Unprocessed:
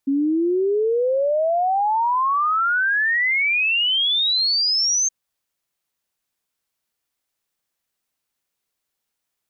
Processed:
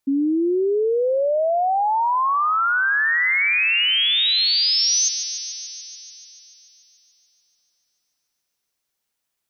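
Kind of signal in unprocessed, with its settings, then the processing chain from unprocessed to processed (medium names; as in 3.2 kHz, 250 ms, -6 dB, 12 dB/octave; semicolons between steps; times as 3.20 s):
log sweep 270 Hz -> 6.4 kHz 5.02 s -16.5 dBFS
on a send: feedback echo behind a high-pass 145 ms, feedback 75%, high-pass 1.7 kHz, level -9.5 dB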